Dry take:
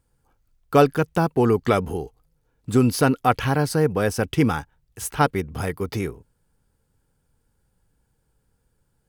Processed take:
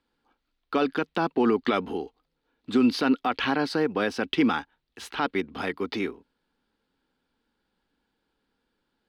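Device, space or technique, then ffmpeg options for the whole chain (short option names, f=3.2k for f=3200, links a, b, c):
DJ mixer with the lows and highs turned down: -filter_complex "[0:a]acrossover=split=220 3800:gain=0.158 1 0.0891[a][b][c];[a][b][c]amix=inputs=3:normalize=0,alimiter=limit=-13.5dB:level=0:latency=1:release=49,equalizer=f=125:t=o:w=1:g=-9,equalizer=f=250:t=o:w=1:g=7,equalizer=f=500:t=o:w=1:g=-5,equalizer=f=4k:t=o:w=1:g=11"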